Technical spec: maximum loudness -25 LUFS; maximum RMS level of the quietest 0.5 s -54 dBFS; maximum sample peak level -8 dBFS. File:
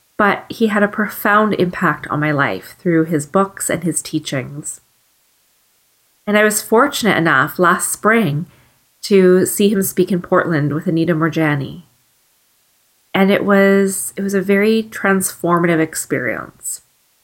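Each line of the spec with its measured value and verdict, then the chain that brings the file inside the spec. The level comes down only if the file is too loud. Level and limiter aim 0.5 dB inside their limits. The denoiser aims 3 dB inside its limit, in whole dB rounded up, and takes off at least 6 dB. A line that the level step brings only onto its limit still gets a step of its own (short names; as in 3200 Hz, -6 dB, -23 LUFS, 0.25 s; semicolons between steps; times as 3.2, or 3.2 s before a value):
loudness -15.5 LUFS: fail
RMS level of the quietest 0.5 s -59 dBFS: OK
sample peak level -2.0 dBFS: fail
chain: gain -10 dB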